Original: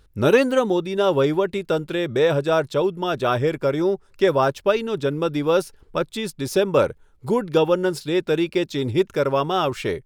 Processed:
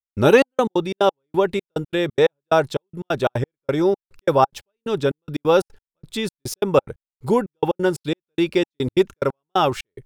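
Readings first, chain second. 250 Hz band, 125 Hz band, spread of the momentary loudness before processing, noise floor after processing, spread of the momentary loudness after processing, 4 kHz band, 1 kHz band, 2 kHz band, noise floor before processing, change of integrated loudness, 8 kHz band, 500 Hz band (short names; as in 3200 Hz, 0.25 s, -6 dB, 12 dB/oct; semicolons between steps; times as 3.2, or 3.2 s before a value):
0.0 dB, -0.5 dB, 6 LU, under -85 dBFS, 10 LU, -0.5 dB, +2.0 dB, 0.0 dB, -55 dBFS, 0.0 dB, +0.5 dB, -0.5 dB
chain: step gate "..xxx..x.xx.x." 179 bpm -60 dB; dynamic EQ 820 Hz, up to +7 dB, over -43 dBFS, Q 7.6; gain +2.5 dB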